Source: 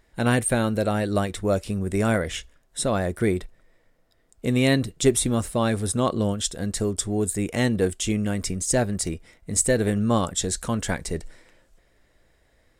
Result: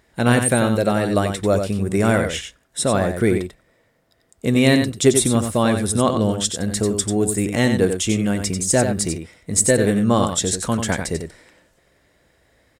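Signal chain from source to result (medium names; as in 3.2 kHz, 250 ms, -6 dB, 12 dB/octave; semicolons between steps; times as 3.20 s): high-pass 71 Hz; delay 92 ms -7 dB; trim +4.5 dB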